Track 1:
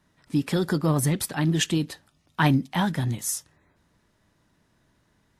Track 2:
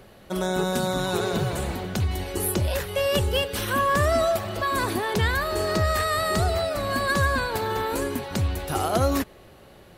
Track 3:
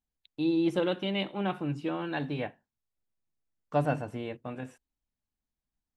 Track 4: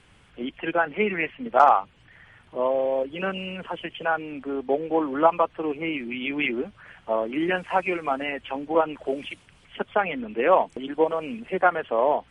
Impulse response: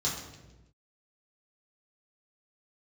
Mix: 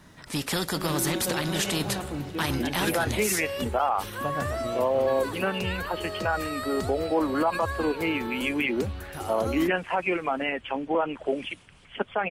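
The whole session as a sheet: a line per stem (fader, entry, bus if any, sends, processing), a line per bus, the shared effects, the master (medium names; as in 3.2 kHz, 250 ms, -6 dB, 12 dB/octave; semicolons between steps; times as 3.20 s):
+0.5 dB, 0.00 s, no send, spectrum-flattening compressor 2:1
-9.5 dB, 0.45 s, no send, none
-0.5 dB, 0.50 s, no send, compression, threshold -28 dBFS, peak gain reduction 7.5 dB
+1.0 dB, 2.20 s, no send, none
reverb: none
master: peak limiter -15.5 dBFS, peak gain reduction 11.5 dB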